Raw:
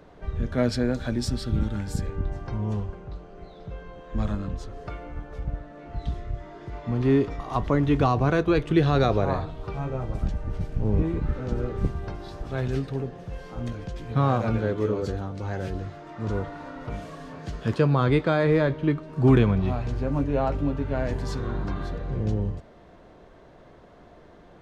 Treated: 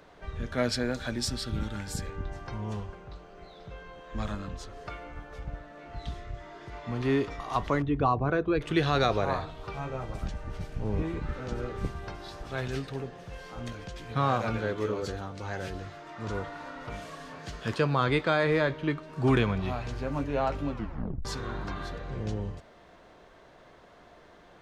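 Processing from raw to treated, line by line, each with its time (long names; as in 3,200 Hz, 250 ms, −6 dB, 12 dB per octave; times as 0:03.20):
0:07.82–0:08.61: spectral envelope exaggerated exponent 1.5
0:20.70: tape stop 0.55 s
whole clip: tilt shelving filter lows −5.5 dB, about 680 Hz; level −2.5 dB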